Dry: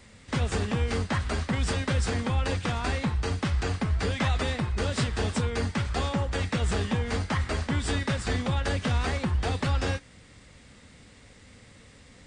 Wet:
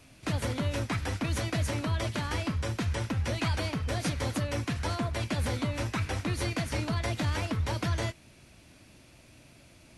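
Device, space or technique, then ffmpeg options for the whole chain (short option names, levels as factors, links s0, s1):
nightcore: -af "asetrate=54243,aresample=44100,volume=0.668"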